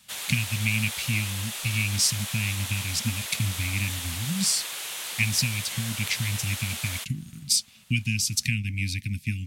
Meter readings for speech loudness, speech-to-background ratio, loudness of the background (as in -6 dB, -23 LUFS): -27.5 LUFS, 4.5 dB, -32.0 LUFS